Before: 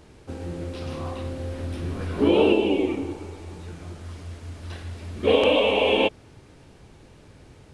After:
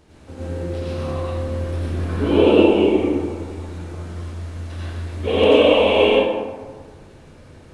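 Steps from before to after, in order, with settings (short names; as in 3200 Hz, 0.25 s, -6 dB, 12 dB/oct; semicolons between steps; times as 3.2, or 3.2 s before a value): plate-style reverb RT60 1.5 s, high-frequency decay 0.45×, pre-delay 75 ms, DRR -8 dB; gain -3.5 dB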